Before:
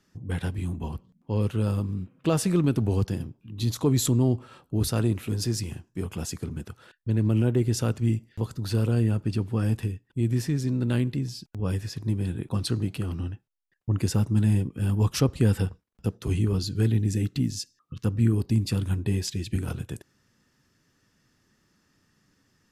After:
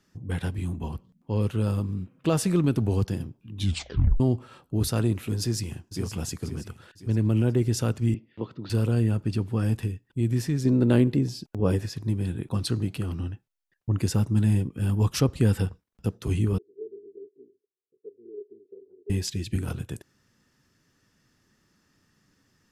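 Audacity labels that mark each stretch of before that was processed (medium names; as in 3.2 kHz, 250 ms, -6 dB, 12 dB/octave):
3.560000	3.560000	tape stop 0.64 s
5.390000	6.080000	echo throw 520 ms, feedback 45%, level -9 dB
8.140000	8.700000	cabinet simulation 190–3400 Hz, peaks and dips at 330 Hz +4 dB, 770 Hz -4 dB, 1.6 kHz -6 dB
10.650000	11.860000	peaking EQ 450 Hz +9.5 dB 2.5 oct
16.580000	19.100000	Butterworth band-pass 410 Hz, Q 7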